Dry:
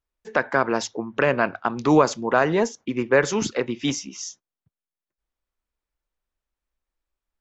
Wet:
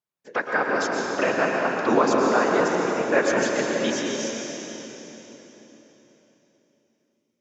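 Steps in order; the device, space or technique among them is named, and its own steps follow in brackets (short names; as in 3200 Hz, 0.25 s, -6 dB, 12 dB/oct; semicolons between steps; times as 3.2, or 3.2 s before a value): whispering ghost (whisperiser; HPF 240 Hz 12 dB/oct; reverb RT60 4.0 s, pre-delay 0.106 s, DRR -1.5 dB); gain -3 dB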